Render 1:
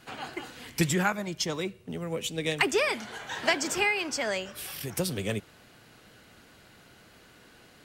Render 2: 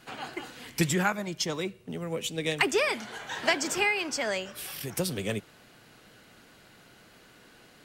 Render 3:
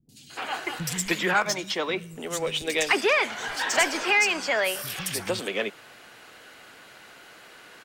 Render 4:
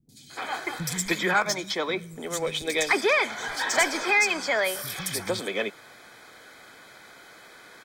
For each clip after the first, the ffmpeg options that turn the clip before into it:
-af "equalizer=f=76:t=o:w=0.6:g=-8"
-filter_complex "[0:a]asplit=2[a][b];[b]highpass=f=720:p=1,volume=15dB,asoftclip=type=tanh:threshold=-11.5dB[c];[a][c]amix=inputs=2:normalize=0,lowpass=f=6.8k:p=1,volume=-6dB,acrossover=split=200|4600[d][e][f];[f]adelay=90[g];[e]adelay=300[h];[d][h][g]amix=inputs=3:normalize=0"
-af "asuperstop=centerf=2800:order=20:qfactor=7"

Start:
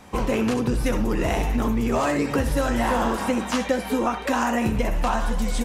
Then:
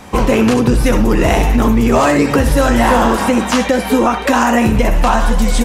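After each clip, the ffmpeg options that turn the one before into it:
-af "alimiter=level_in=12dB:limit=-1dB:release=50:level=0:latency=1,volume=-1dB"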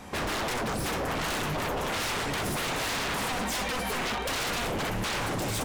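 -af "aeval=exprs='0.141*(abs(mod(val(0)/0.141+3,4)-2)-1)':c=same,volume=-8.5dB"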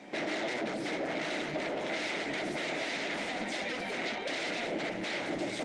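-af "highpass=f=170:w=0.5412,highpass=f=170:w=1.3066,equalizer=f=320:t=q:w=4:g=9,equalizer=f=630:t=q:w=4:g=8,equalizer=f=1.1k:t=q:w=4:g=-10,equalizer=f=2.1k:t=q:w=4:g=9,equalizer=f=3.8k:t=q:w=4:g=4,lowpass=f=7.1k:w=0.5412,lowpass=f=7.1k:w=1.3066,volume=-5.5dB" -ar 48000 -c:a libopus -b:a 32k

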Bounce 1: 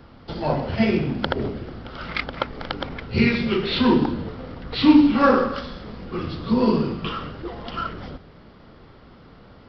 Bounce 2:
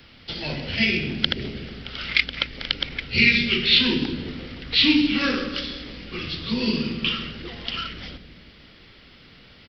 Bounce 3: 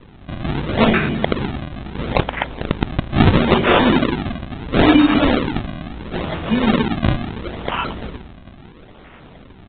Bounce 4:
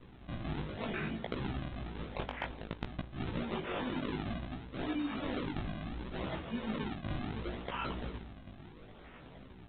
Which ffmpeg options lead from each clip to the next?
-filter_complex "[0:a]highshelf=f=1.6k:t=q:w=1.5:g=13.5,acrossover=split=480|1500[a][b][c];[a]aecho=1:1:166|332|498|664|830|996|1162:0.398|0.235|0.139|0.0818|0.0482|0.0285|0.0168[d];[b]acompressor=threshold=-35dB:ratio=6[e];[d][e][c]amix=inputs=3:normalize=0,volume=-5.5dB"
-af "aresample=8000,acrusher=samples=10:mix=1:aa=0.000001:lfo=1:lforange=16:lforate=0.74,aresample=44100,alimiter=level_in=9dB:limit=-1dB:release=50:level=0:latency=1,volume=-1dB"
-af "areverse,acompressor=threshold=-23dB:ratio=12,areverse,flanger=delay=15.5:depth=4.6:speed=0.64,volume=-8dB"

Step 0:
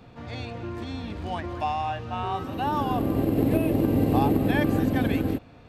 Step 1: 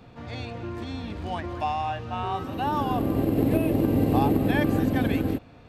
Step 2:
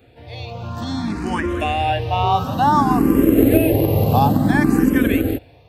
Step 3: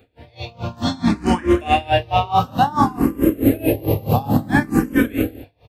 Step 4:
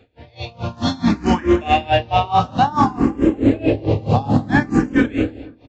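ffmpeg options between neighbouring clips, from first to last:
-af anull
-filter_complex "[0:a]highshelf=f=8.8k:g=9.5,dynaudnorm=f=290:g=5:m=13.5dB,asplit=2[a][b];[b]afreqshift=0.57[c];[a][c]amix=inputs=2:normalize=1,volume=1.5dB"
-filter_complex "[0:a]dynaudnorm=f=180:g=7:m=11dB,asplit=2[a][b];[b]aecho=0:1:29|60:0.501|0.211[c];[a][c]amix=inputs=2:normalize=0,aeval=exprs='val(0)*pow(10,-23*(0.5-0.5*cos(2*PI*4.6*n/s))/20)':c=same,volume=1dB"
-filter_complex "[0:a]asplit=2[a][b];[b]asoftclip=type=hard:threshold=-12.5dB,volume=-10dB[c];[a][c]amix=inputs=2:normalize=0,asplit=2[d][e];[e]adelay=242,lowpass=f=1.5k:p=1,volume=-20dB,asplit=2[f][g];[g]adelay=242,lowpass=f=1.5k:p=1,volume=0.45,asplit=2[h][i];[i]adelay=242,lowpass=f=1.5k:p=1,volume=0.45[j];[d][f][h][j]amix=inputs=4:normalize=0,aresample=16000,aresample=44100,volume=-1dB"

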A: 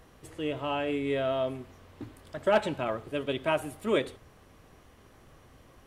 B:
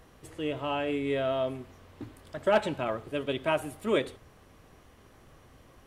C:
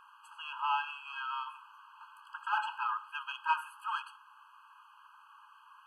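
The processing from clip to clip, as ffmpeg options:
-af anull
-filter_complex "[0:a]asplit=2[a][b];[b]highpass=f=720:p=1,volume=17dB,asoftclip=type=tanh:threshold=-13dB[c];[a][c]amix=inputs=2:normalize=0,lowpass=f=1.3k:p=1,volume=-6dB,equalizer=f=5.6k:t=o:w=1:g=-11.5,afftfilt=real='re*eq(mod(floor(b*sr/1024/830),2),1)':imag='im*eq(mod(floor(b*sr/1024/830),2),1)':win_size=1024:overlap=0.75"

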